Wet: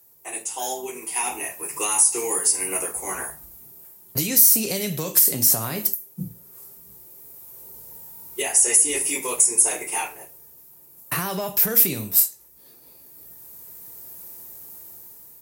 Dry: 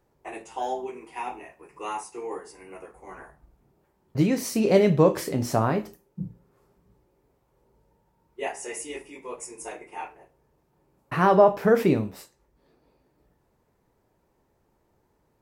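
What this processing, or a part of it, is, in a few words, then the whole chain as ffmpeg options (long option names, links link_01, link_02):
FM broadcast chain: -filter_complex "[0:a]highpass=65,dynaudnorm=framelen=570:gausssize=5:maxgain=15dB,acrossover=split=180|2000[link_01][link_02][link_03];[link_01]acompressor=threshold=-27dB:ratio=4[link_04];[link_02]acompressor=threshold=-25dB:ratio=4[link_05];[link_03]acompressor=threshold=-35dB:ratio=4[link_06];[link_04][link_05][link_06]amix=inputs=3:normalize=0,aemphasis=mode=production:type=75fm,alimiter=limit=-16.5dB:level=0:latency=1:release=146,asoftclip=type=hard:threshold=-18.5dB,lowpass=frequency=15000:width=0.5412,lowpass=frequency=15000:width=1.3066,aemphasis=mode=production:type=75fm,volume=-1dB"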